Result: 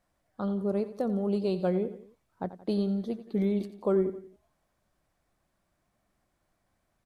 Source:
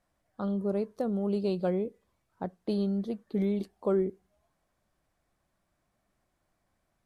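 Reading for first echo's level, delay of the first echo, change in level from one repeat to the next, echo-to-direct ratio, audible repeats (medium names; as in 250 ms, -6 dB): -14.0 dB, 88 ms, -6.5 dB, -13.0 dB, 3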